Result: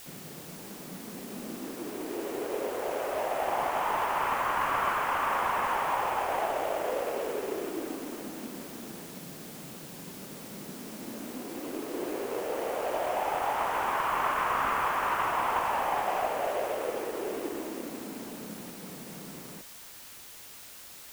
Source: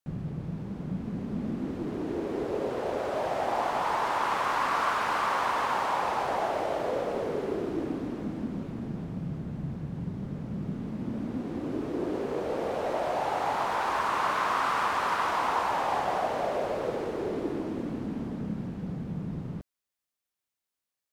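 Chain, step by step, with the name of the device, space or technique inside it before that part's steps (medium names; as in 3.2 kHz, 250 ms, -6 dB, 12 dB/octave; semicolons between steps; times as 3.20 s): army field radio (band-pass 350–3000 Hz; CVSD coder 16 kbps; white noise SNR 15 dB)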